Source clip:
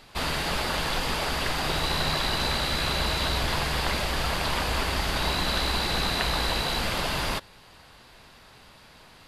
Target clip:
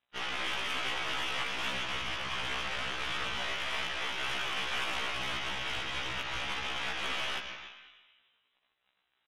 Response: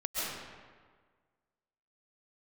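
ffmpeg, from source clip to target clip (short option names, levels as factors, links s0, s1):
-filter_complex "[0:a]highpass=f=1400:p=1,alimiter=limit=0.0794:level=0:latency=1:release=202,asplit=2[s0][s1];[s1]adelay=300,highpass=300,lowpass=3400,asoftclip=type=hard:threshold=0.0299,volume=0.355[s2];[s0][s2]amix=inputs=2:normalize=0,aeval=exprs='sgn(val(0))*max(abs(val(0))-0.00376,0)':c=same,asplit=2[s3][s4];[1:a]atrim=start_sample=2205[s5];[s4][s5]afir=irnorm=-1:irlink=0,volume=0.316[s6];[s3][s6]amix=inputs=2:normalize=0,lowpass=f=3400:t=q:w=0.5098,lowpass=f=3400:t=q:w=0.6013,lowpass=f=3400:t=q:w=0.9,lowpass=f=3400:t=q:w=2.563,afreqshift=-4000,aeval=exprs='0.133*(cos(1*acos(clip(val(0)/0.133,-1,1)))-cos(1*PI/2))+0.0119*(cos(8*acos(clip(val(0)/0.133,-1,1)))-cos(8*PI/2))':c=same,afftfilt=real='re*1.73*eq(mod(b,3),0)':imag='im*1.73*eq(mod(b,3),0)':win_size=2048:overlap=0.75"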